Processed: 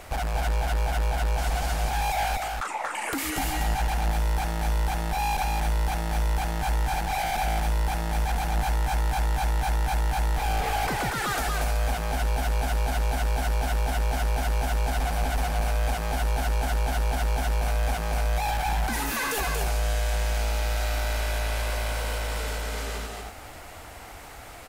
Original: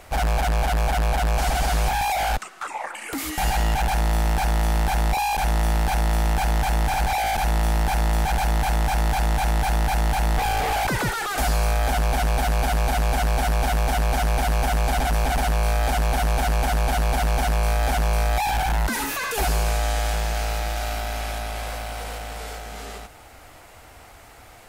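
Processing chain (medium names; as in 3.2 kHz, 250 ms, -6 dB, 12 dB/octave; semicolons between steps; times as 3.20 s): compression, threshold -29 dBFS, peak gain reduction 10.5 dB; delay 234 ms -3.5 dB; trim +2 dB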